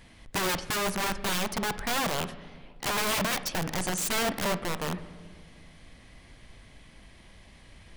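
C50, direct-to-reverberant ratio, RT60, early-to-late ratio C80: 14.0 dB, 11.5 dB, 1.9 s, 16.0 dB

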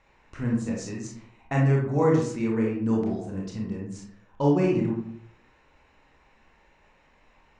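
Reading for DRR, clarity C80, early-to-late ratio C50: -2.0 dB, 7.0 dB, 3.0 dB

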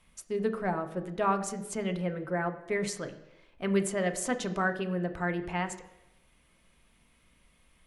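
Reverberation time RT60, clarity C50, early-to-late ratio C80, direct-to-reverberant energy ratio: 0.90 s, 12.0 dB, 14.0 dB, 6.0 dB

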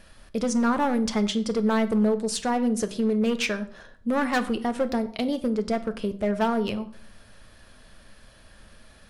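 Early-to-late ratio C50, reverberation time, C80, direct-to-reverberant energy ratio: 15.5 dB, 0.60 s, 18.0 dB, 9.0 dB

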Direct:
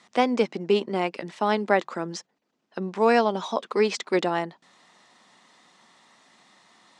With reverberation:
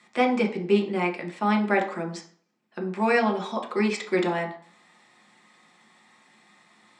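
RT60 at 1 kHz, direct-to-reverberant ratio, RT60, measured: 0.45 s, 1.5 dB, 0.50 s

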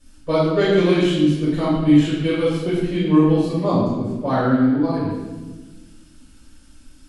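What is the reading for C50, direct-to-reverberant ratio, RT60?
-0.5 dB, -12.0 dB, 1.3 s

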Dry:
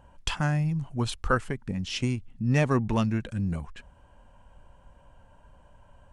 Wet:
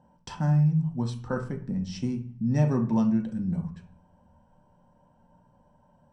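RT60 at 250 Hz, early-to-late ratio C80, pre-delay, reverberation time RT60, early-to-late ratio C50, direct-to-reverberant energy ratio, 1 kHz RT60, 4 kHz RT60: 0.75 s, 16.0 dB, 3 ms, 0.45 s, 10.5 dB, 3.0 dB, 0.40 s, 0.40 s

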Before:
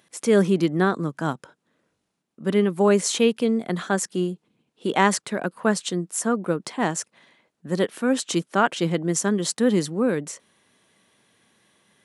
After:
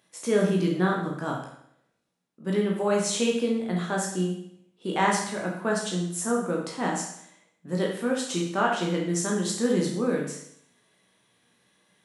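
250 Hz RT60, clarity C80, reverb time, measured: 0.70 s, 7.0 dB, 0.70 s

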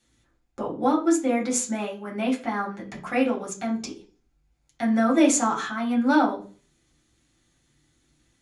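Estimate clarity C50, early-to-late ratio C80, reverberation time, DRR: 11.0 dB, 16.5 dB, 0.40 s, -3.0 dB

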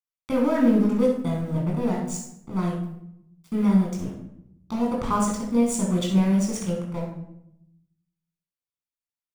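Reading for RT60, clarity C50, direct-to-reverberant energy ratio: 0.75 s, 3.5 dB, -2.5 dB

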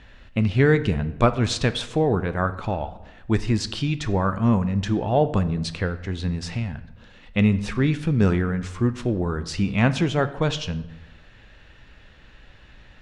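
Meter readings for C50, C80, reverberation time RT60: 15.0 dB, 16.5 dB, 1.0 s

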